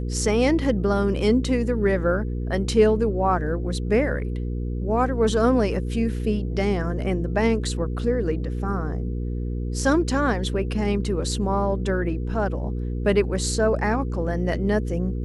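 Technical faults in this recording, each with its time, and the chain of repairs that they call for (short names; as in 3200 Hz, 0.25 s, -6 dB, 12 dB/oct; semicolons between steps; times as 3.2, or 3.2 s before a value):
hum 60 Hz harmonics 8 -27 dBFS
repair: de-hum 60 Hz, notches 8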